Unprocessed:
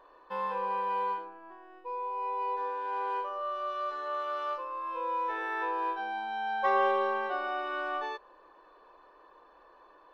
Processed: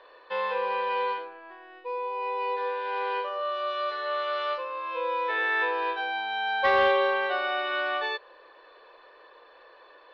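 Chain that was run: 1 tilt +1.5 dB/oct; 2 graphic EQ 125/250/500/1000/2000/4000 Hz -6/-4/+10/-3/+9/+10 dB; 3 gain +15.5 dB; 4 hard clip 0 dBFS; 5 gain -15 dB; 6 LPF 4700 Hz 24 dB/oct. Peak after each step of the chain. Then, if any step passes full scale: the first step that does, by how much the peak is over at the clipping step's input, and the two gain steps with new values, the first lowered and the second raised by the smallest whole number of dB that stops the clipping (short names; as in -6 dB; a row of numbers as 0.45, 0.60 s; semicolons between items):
-16.5, -10.5, +5.0, 0.0, -15.0, -14.0 dBFS; step 3, 5.0 dB; step 3 +10.5 dB, step 5 -10 dB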